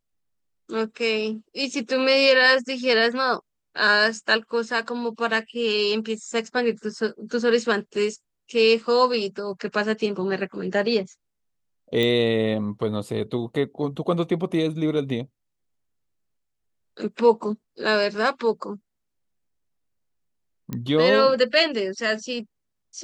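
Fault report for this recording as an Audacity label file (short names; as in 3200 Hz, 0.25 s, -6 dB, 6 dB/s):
12.030000	12.030000	pop -12 dBFS
20.730000	20.730000	pop -16 dBFS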